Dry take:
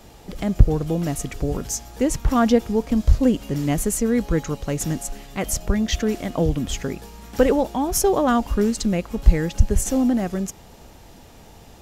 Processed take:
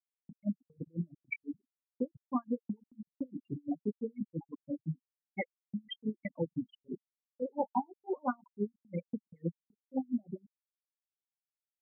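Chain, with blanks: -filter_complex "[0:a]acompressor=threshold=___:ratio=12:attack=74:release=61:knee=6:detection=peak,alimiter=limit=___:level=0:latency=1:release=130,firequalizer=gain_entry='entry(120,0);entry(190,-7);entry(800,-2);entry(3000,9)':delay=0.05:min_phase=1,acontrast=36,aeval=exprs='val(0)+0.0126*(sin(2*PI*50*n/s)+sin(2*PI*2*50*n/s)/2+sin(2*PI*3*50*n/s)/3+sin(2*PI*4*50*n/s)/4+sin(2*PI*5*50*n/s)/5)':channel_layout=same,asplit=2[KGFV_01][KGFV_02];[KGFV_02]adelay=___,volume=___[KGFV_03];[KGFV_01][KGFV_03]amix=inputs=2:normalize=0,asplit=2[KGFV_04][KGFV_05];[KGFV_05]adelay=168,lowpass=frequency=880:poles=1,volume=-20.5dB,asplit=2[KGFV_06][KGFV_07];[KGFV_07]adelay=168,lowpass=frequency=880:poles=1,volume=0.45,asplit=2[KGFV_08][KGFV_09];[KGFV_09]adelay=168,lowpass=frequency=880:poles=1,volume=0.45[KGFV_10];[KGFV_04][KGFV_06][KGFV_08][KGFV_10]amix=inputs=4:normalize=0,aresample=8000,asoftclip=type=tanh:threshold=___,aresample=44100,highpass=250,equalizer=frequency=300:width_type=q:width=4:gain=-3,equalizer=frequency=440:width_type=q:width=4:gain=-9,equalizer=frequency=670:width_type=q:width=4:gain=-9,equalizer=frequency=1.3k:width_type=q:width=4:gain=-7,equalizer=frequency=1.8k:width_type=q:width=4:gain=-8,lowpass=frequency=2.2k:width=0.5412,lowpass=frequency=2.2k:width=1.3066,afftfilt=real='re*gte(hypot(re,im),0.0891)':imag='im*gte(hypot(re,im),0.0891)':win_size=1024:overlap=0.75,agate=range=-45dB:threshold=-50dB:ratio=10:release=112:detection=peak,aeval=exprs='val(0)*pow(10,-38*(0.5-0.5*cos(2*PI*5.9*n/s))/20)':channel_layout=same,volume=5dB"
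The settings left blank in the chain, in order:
-28dB, -15dB, 24, -6dB, -21dB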